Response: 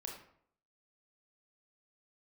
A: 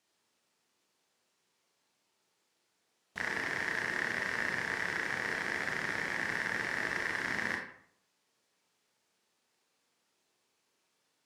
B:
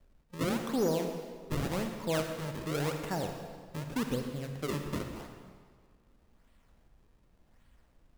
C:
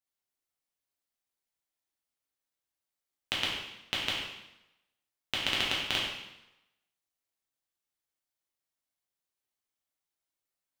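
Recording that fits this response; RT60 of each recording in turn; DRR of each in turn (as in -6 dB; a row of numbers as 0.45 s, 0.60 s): A; 0.65 s, 1.8 s, 0.90 s; -0.5 dB, 4.0 dB, -5.5 dB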